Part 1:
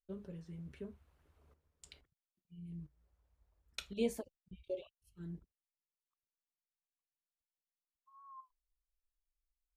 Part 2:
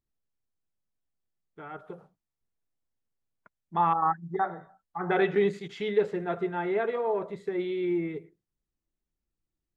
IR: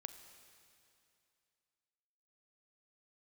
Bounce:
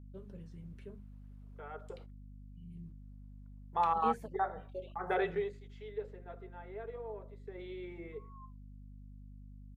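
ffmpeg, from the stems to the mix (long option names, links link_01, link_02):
-filter_complex "[0:a]acrossover=split=3100[link_01][link_02];[link_02]acompressor=threshold=-59dB:ratio=4:attack=1:release=60[link_03];[link_01][link_03]amix=inputs=2:normalize=0,adelay=50,volume=-2.5dB[link_04];[1:a]agate=range=-20dB:threshold=-49dB:ratio=16:detection=peak,lowshelf=frequency=360:width_type=q:width=3:gain=-7.5,volume=2dB,afade=type=out:start_time=5.13:duration=0.45:silence=0.223872,afade=type=in:start_time=7.43:duration=0.24:silence=0.354813[link_05];[link_04][link_05]amix=inputs=2:normalize=0,bandreject=frequency=50:width_type=h:width=6,bandreject=frequency=100:width_type=h:width=6,bandreject=frequency=150:width_type=h:width=6,bandreject=frequency=200:width_type=h:width=6,bandreject=frequency=250:width_type=h:width=6,bandreject=frequency=300:width_type=h:width=6,bandreject=frequency=350:width_type=h:width=6,aeval=exprs='val(0)+0.00316*(sin(2*PI*50*n/s)+sin(2*PI*2*50*n/s)/2+sin(2*PI*3*50*n/s)/3+sin(2*PI*4*50*n/s)/4+sin(2*PI*5*50*n/s)/5)':channel_layout=same"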